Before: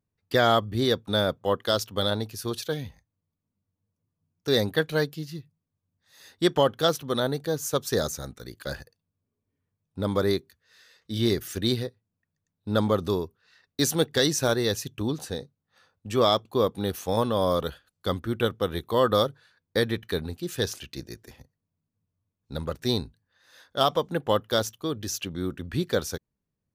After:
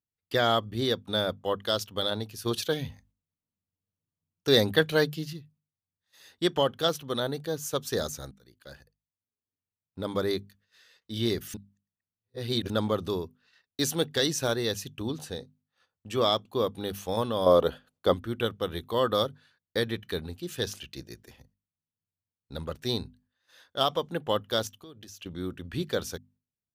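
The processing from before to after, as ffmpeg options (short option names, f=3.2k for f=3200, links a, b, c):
-filter_complex "[0:a]asettb=1/sr,asplit=3[a][b][c];[a]atrim=end=17.464[d];[b]atrim=start=17.46:end=18.14,asetpts=PTS-STARTPTS,afade=t=in:d=0.004:c=qsin,afade=t=out:st=0.676:d=0.004:c=qsin,equalizer=f=530:t=o:w=2.5:g=10.5[e];[c]atrim=start=18.136[f];[d][e]acrossfade=d=0.004:c1=hsin:c2=qsin[g];[g][f]acrossfade=d=0.004:c1=qsin:c2=hsin,asettb=1/sr,asplit=3[h][i][j];[h]atrim=end=24.674[k];[i]atrim=start=24.67:end=25.26,asetpts=PTS-STARTPTS,afade=t=in:d=0.004:c=qsin,afade=t=out:st=0.586:d=0.004:c=qsin,acompressor=threshold=-39dB:ratio=16:attack=3.2:release=140:knee=1:detection=peak[l];[j]atrim=start=25.256[m];[k][l]acrossfade=d=0.004:c1=hsin:c2=qsin[n];[n][m]acrossfade=d=0.004:c1=qsin:c2=hsin,asplit=6[o][p][q][r][s][t];[o]atrim=end=2.462[u];[p]atrim=start=2.458:end=5.332,asetpts=PTS-STARTPTS,volume=5.5dB[v];[q]atrim=start=5.328:end=8.31,asetpts=PTS-STARTPTS,afade=t=out:st=2.978:d=0.004:c=hsin:silence=0.125893[w];[r]atrim=start=8.31:end=11.542,asetpts=PTS-STARTPTS,afade=t=in:d=1.68:silence=0.125893[x];[s]atrim=start=11.538:end=12.702,asetpts=PTS-STARTPTS,areverse[y];[t]atrim=start=12.698[z];[u][v]acrossfade=d=0.004:c1=hsin:c2=hsin[aa];[w][x]concat=n=2:v=0:a=1[ab];[aa][ab]acrossfade=d=0.004:c1=hsin:c2=hsin[ac];[ac][y]acrossfade=d=0.004:c1=hsin:c2=hsin[ad];[ad][z]acrossfade=d=0.004:c1=hsin:c2=hsin,agate=range=-11dB:threshold=-59dB:ratio=16:detection=peak,equalizer=f=3k:t=o:w=0.49:g=4.5,bandreject=f=50:t=h:w=6,bandreject=f=100:t=h:w=6,bandreject=f=150:t=h:w=6,bandreject=f=200:t=h:w=6,bandreject=f=250:t=h:w=6,volume=-4dB"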